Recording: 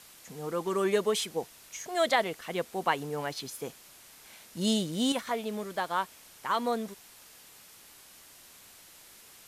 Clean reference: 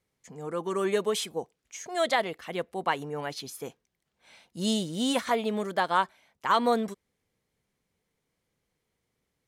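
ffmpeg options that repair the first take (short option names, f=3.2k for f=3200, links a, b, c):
-af "adeclick=t=4,afwtdn=0.0025,asetnsamples=n=441:p=0,asendcmd='5.12 volume volume 5.5dB',volume=0dB"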